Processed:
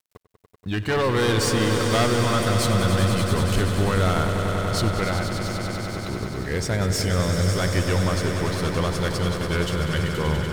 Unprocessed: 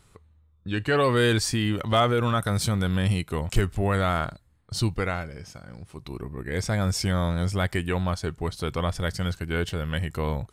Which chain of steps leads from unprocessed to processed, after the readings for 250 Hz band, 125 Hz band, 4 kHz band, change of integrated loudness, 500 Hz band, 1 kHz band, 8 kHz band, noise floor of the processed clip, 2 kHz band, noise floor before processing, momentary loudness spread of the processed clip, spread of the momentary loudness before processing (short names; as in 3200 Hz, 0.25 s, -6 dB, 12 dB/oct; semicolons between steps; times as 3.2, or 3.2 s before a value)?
+3.5 dB, +3.5 dB, +4.0 dB, +3.0 dB, +3.5 dB, +2.5 dB, +5.5 dB, -57 dBFS, +3.5 dB, -60 dBFS, 7 LU, 14 LU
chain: one-sided clip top -28.5 dBFS, bottom -14.5 dBFS; sample leveller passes 1; sample gate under -48 dBFS; swelling echo 96 ms, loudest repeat 5, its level -9.5 dB